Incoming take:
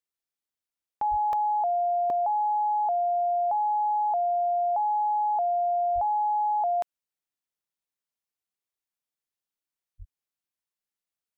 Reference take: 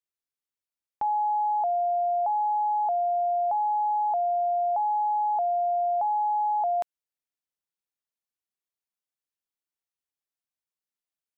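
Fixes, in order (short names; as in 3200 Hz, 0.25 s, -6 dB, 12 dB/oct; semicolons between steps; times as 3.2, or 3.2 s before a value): 1.1–1.22 HPF 140 Hz 24 dB/oct; 5.94–6.06 HPF 140 Hz 24 dB/oct; 9.98–10.1 HPF 140 Hz 24 dB/oct; interpolate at 1.33/2.1/10.57, 1.5 ms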